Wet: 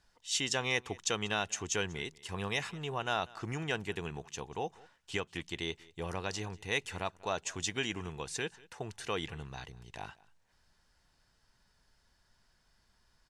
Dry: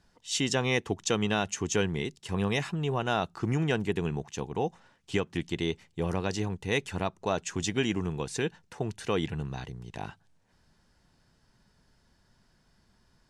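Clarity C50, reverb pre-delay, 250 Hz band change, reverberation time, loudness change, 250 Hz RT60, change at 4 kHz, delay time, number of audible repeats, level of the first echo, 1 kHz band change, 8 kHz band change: none, none, -11.0 dB, none, -5.5 dB, none, -1.5 dB, 0.191 s, 1, -23.0 dB, -4.0 dB, -1.5 dB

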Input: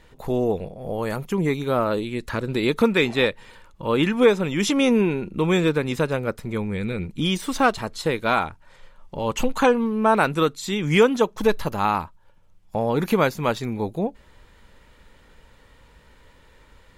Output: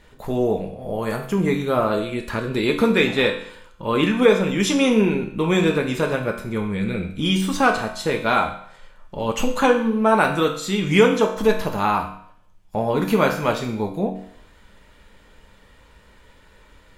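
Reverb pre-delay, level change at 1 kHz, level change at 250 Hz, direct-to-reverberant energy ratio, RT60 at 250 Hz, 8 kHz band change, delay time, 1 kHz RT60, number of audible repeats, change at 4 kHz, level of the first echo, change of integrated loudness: 5 ms, +1.5 dB, +2.0 dB, 2.0 dB, 0.55 s, +2.0 dB, none, 0.65 s, none, +2.0 dB, none, +2.0 dB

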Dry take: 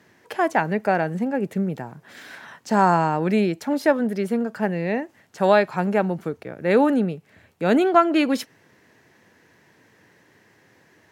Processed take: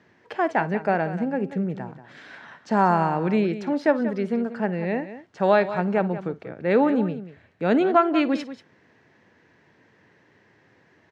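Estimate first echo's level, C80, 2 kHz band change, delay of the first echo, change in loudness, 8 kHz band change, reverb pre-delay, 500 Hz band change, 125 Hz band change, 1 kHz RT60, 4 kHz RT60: -19.0 dB, none, -2.5 dB, 55 ms, -1.5 dB, n/a, none, -1.5 dB, -1.5 dB, none, none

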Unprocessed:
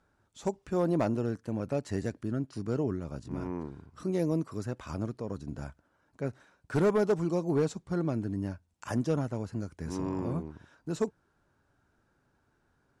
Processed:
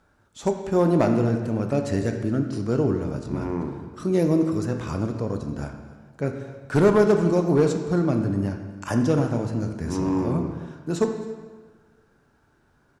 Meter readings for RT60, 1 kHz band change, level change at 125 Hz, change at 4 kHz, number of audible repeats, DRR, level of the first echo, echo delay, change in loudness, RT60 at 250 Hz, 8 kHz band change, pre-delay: 1.4 s, +9.0 dB, +9.0 dB, +8.5 dB, 1, 5.0 dB, -20.5 dB, 0.267 s, +9.0 dB, 1.5 s, +8.0 dB, 16 ms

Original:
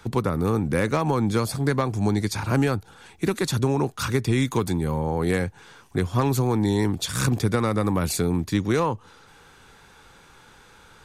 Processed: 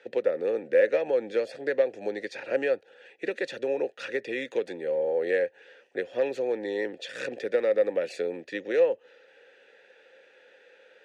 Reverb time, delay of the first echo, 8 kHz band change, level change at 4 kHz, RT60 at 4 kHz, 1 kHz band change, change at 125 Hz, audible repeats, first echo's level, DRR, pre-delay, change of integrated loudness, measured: none, none, under -20 dB, -10.5 dB, none, -14.5 dB, under -30 dB, none, none, none, none, -4.5 dB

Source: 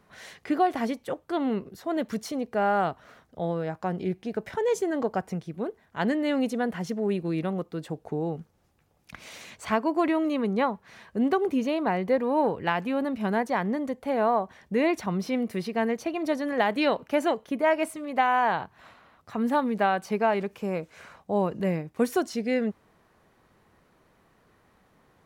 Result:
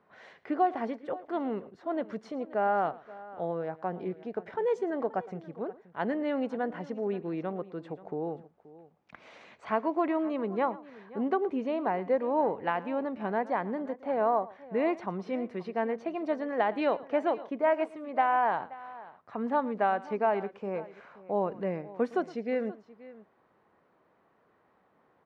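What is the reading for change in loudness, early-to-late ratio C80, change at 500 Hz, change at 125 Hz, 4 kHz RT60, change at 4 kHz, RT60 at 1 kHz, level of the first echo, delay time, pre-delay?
-4.0 dB, none, -3.0 dB, -9.0 dB, none, -12.0 dB, none, -19.5 dB, 0.113 s, none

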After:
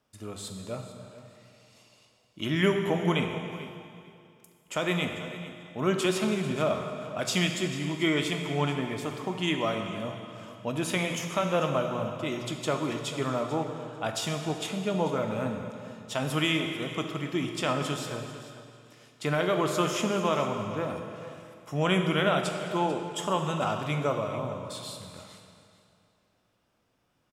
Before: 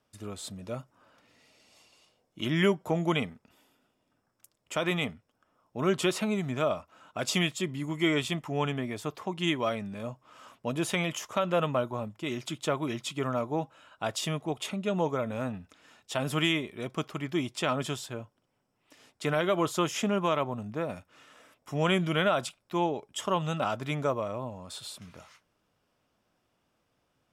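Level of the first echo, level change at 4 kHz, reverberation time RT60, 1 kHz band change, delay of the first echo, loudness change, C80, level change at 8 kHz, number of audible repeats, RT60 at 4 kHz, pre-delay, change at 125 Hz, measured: -15.5 dB, +1.5 dB, 2.4 s, +1.5 dB, 0.442 s, +1.0 dB, 6.0 dB, +1.5 dB, 2, 2.2 s, 18 ms, +2.0 dB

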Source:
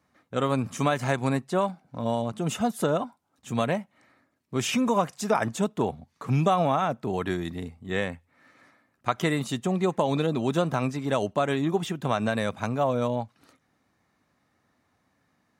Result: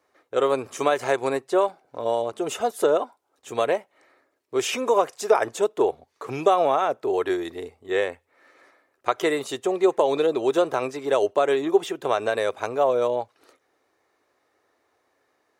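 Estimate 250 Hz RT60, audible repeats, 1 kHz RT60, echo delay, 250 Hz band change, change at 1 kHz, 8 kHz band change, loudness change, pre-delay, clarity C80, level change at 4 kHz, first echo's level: none, none, none, none, -3.0 dB, +3.0 dB, +1.5 dB, +3.5 dB, none, none, +1.5 dB, none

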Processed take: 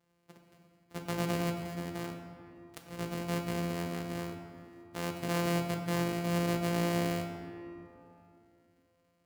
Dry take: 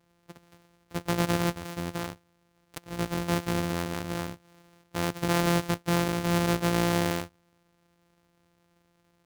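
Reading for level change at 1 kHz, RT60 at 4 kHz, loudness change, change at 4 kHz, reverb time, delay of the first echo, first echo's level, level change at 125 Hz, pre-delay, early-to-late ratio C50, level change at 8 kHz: -6.5 dB, 1.4 s, -5.5 dB, -7.0 dB, 2.9 s, none, none, -5.0 dB, 4 ms, 4.5 dB, -7.5 dB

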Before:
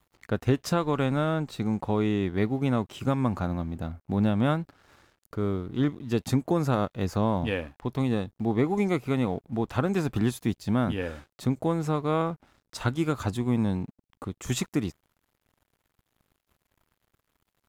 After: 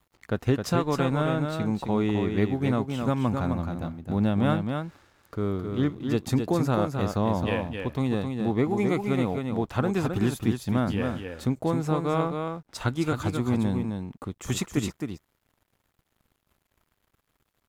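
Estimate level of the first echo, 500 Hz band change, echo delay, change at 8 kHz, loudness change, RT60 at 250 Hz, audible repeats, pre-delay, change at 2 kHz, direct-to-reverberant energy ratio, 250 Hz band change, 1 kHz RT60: -5.5 dB, +1.0 dB, 0.264 s, +1.0 dB, +1.0 dB, none, 1, none, +1.0 dB, none, +1.0 dB, none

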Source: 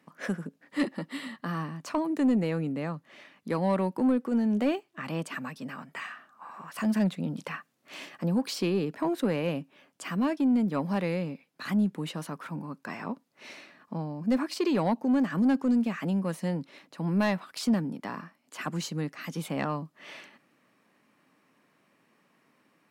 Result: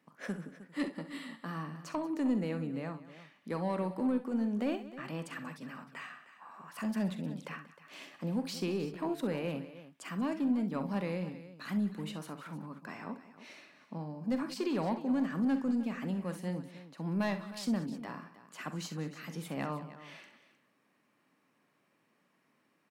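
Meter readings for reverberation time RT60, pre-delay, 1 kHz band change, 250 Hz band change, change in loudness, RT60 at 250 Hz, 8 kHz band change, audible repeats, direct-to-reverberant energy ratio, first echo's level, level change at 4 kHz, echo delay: none, none, -6.5 dB, -6.5 dB, -6.5 dB, none, -6.5 dB, 3, none, -13.0 dB, -6.5 dB, 44 ms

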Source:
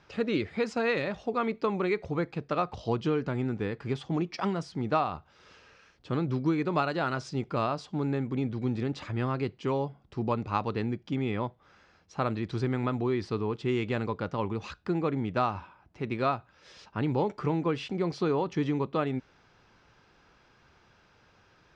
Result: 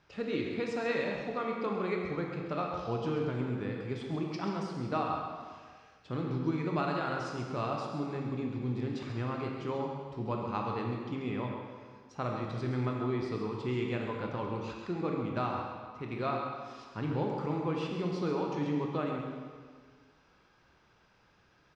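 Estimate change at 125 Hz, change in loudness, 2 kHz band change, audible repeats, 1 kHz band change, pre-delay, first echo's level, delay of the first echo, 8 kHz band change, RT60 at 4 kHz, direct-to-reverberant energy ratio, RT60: -3.5 dB, -4.0 dB, -4.0 dB, 1, -3.5 dB, 20 ms, -8.0 dB, 0.134 s, n/a, 1.6 s, 0.0 dB, 1.7 s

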